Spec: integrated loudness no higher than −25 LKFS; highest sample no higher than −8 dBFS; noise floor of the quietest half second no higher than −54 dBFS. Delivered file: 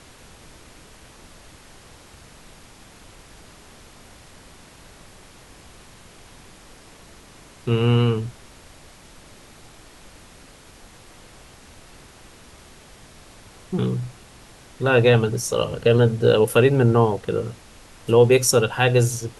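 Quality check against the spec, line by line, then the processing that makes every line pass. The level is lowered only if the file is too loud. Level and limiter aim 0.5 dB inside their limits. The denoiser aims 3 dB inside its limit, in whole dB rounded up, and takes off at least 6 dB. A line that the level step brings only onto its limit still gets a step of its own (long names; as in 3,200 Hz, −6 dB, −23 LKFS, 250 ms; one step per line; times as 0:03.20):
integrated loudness −19.5 LKFS: out of spec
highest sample −4.5 dBFS: out of spec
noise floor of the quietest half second −47 dBFS: out of spec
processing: broadband denoise 6 dB, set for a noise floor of −47 dBFS
level −6 dB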